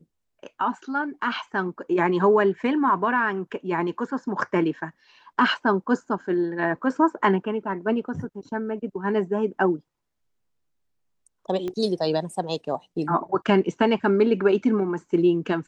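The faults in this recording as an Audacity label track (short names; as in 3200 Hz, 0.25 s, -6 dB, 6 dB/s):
11.680000	11.680000	pop -19 dBFS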